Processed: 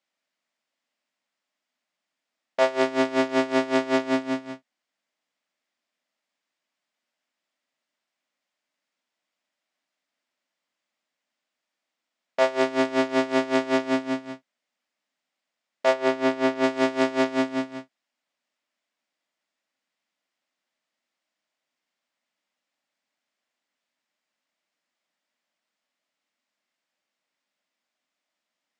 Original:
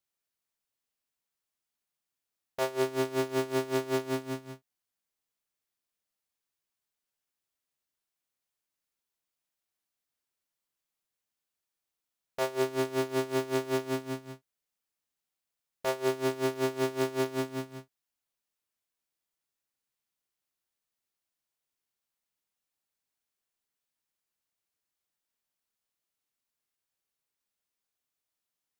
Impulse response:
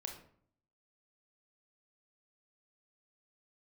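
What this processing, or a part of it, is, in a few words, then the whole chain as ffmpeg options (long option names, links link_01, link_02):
television speaker: -filter_complex "[0:a]highpass=frequency=190:width=0.5412,highpass=frequency=190:width=1.3066,equalizer=frequency=250:width_type=q:width=4:gain=4,equalizer=frequency=410:width_type=q:width=4:gain=-8,equalizer=frequency=610:width_type=q:width=4:gain=6,equalizer=frequency=2000:width_type=q:width=4:gain=4,equalizer=frequency=4200:width_type=q:width=4:gain=-3,equalizer=frequency=6100:width_type=q:width=4:gain=-5,lowpass=frequency=6600:width=0.5412,lowpass=frequency=6600:width=1.3066,asettb=1/sr,asplit=3[link_01][link_02][link_03];[link_01]atrim=end=15.934[link_04];[link_02]atrim=start=15.93:end=16.64,asetpts=PTS-STARTPTS,afade=type=in:duration=0.004:curve=qsin,afade=type=out:start_time=0.706:duration=0.004:curve=qsin,highshelf=frequency=4500:gain=-5.5[link_05];[link_03]atrim=start=16.636[link_06];[link_04][link_05]acrossfade=duration=0.004:curve1=hsin:curve2=qsin[link_07];[link_07][link_06]acrossfade=duration=0.004:curve1=qsin:curve2=hsin,volume=8.5dB"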